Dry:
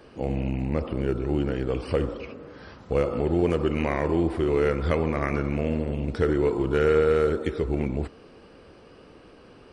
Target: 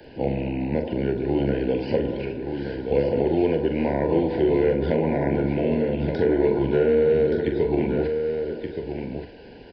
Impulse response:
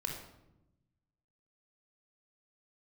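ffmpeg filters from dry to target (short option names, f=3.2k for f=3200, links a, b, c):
-filter_complex "[0:a]aresample=11025,aresample=44100,acrossover=split=130|450|1100[a][b][c][d];[a]acompressor=threshold=-44dB:ratio=4[e];[b]acompressor=threshold=-27dB:ratio=4[f];[c]acompressor=threshold=-29dB:ratio=4[g];[d]acompressor=threshold=-44dB:ratio=4[h];[e][f][g][h]amix=inputs=4:normalize=0,asuperstop=centerf=1200:order=20:qfactor=2.9,asplit=2[i][j];[j]adelay=43,volume=-7.5dB[k];[i][k]amix=inputs=2:normalize=0,aecho=1:1:1175:0.473,volume=4.5dB"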